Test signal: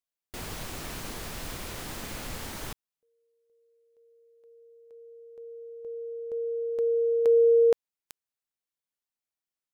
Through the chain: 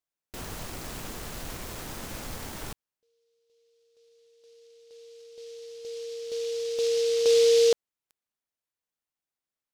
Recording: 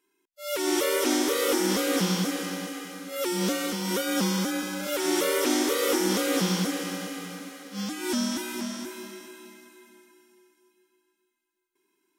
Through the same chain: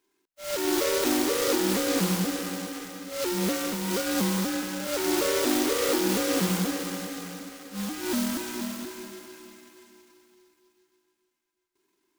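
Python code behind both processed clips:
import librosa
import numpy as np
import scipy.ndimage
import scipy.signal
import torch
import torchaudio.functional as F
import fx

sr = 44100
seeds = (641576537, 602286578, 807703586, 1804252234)

y = fx.noise_mod_delay(x, sr, seeds[0], noise_hz=4300.0, depth_ms=0.081)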